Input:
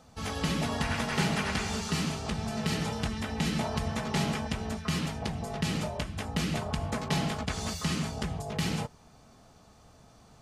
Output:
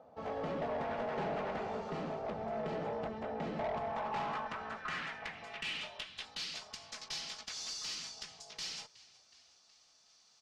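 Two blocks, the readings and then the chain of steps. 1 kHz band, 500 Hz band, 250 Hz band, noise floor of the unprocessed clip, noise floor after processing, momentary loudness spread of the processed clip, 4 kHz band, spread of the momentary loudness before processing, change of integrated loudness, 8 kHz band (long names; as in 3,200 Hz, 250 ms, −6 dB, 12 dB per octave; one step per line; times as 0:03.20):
−3.5 dB, −2.0 dB, −14.0 dB, −57 dBFS, −67 dBFS, 8 LU, −6.5 dB, 5 LU, −8.0 dB, −8.5 dB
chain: band-pass filter sweep 590 Hz → 5,300 Hz, 0:03.52–0:06.67
on a send: echo with shifted repeats 369 ms, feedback 60%, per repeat −47 Hz, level −22.5 dB
on the sum: tube saturation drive 39 dB, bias 0.25
high-frequency loss of the air 65 metres
level +7 dB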